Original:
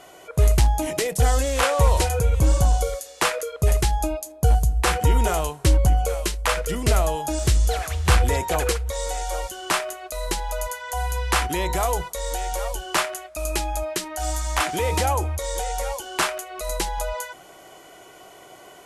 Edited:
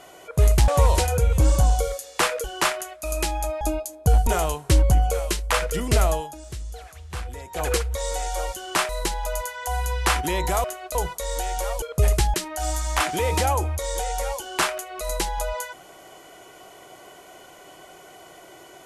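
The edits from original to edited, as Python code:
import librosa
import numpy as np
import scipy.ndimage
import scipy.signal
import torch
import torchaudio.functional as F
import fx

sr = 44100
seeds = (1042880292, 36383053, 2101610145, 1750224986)

y = fx.edit(x, sr, fx.cut(start_s=0.68, length_s=1.02),
    fx.swap(start_s=3.46, length_s=0.52, other_s=12.77, other_length_s=1.17),
    fx.cut(start_s=4.64, length_s=0.58),
    fx.fade_down_up(start_s=7.07, length_s=1.6, db=-15.5, fade_s=0.23),
    fx.move(start_s=9.84, length_s=0.31, to_s=11.9), tone=tone)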